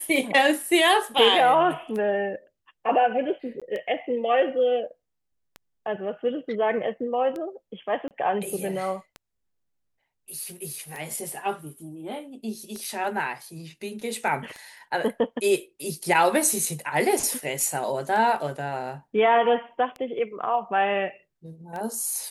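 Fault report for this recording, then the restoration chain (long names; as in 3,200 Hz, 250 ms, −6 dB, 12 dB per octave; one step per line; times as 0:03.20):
scratch tick 33 1/3 rpm
0:03.60–0:03.62: drop-out 16 ms
0:08.08–0:08.11: drop-out 28 ms
0:12.84: drop-out 4 ms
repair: click removal
repair the gap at 0:03.60, 16 ms
repair the gap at 0:08.08, 28 ms
repair the gap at 0:12.84, 4 ms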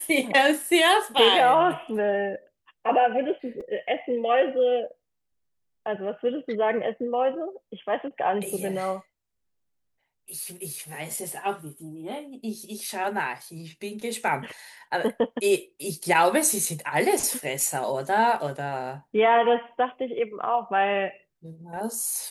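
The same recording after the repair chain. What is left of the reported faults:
none of them is left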